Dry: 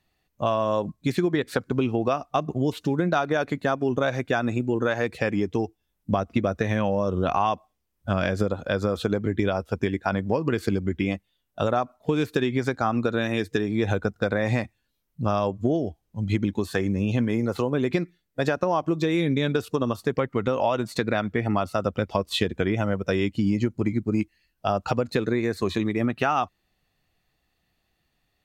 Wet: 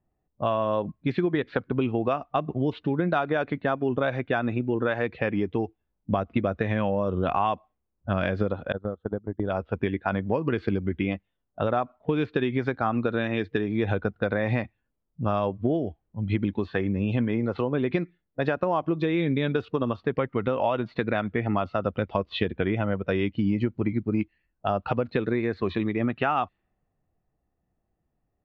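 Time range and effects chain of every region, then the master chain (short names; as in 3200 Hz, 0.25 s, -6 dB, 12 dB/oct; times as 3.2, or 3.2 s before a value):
8.72–9.5 gate -24 dBFS, range -21 dB + running mean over 18 samples + bell 560 Hz -2.5 dB 1.8 oct
whole clip: low-pass opened by the level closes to 770 Hz, open at -19 dBFS; LPF 3500 Hz 24 dB/oct; gain -1.5 dB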